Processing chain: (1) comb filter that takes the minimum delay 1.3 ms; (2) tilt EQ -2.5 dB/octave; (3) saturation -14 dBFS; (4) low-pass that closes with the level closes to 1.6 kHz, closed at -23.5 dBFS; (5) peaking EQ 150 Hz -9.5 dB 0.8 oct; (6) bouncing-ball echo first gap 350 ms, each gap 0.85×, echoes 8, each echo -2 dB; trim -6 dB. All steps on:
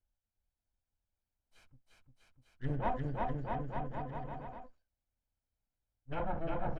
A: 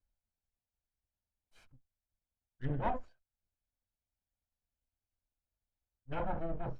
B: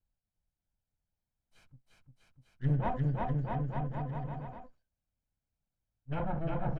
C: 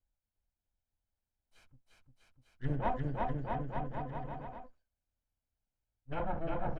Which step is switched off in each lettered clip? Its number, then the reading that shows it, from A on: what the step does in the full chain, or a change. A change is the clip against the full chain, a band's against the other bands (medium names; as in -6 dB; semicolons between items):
6, crest factor change +3.0 dB; 5, 125 Hz band +8.0 dB; 3, distortion -21 dB